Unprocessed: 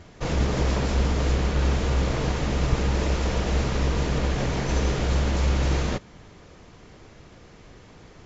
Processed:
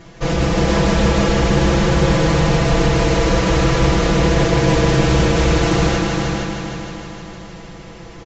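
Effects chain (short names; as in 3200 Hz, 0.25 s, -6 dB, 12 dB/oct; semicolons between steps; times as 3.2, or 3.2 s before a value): comb 6 ms, depth 95%; multi-head echo 0.155 s, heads all three, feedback 58%, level -7 dB; on a send at -6 dB: reverb RT60 1.5 s, pre-delay 58 ms; on the sum: Doppler distortion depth 0.12 ms; gain +4.5 dB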